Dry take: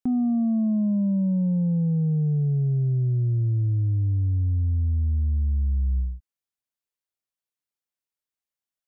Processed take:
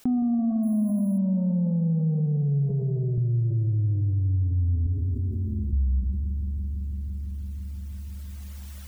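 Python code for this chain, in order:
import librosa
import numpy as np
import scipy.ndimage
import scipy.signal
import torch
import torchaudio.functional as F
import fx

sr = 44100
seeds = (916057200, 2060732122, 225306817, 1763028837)

y = fx.dereverb_blind(x, sr, rt60_s=1.3)
y = fx.resample_bad(y, sr, factor=4, down='filtered', up='hold', at=(0.63, 1.18))
y = fx.fixed_phaser(y, sr, hz=370.0, stages=8, at=(4.86, 5.73))
y = fx.rev_spring(y, sr, rt60_s=3.8, pass_ms=(42, 56), chirp_ms=60, drr_db=7.5)
y = fx.rider(y, sr, range_db=10, speed_s=0.5)
y = fx.low_shelf_res(y, sr, hz=140.0, db=-8.5, q=1.5, at=(2.7, 3.18))
y = fx.env_flatten(y, sr, amount_pct=70)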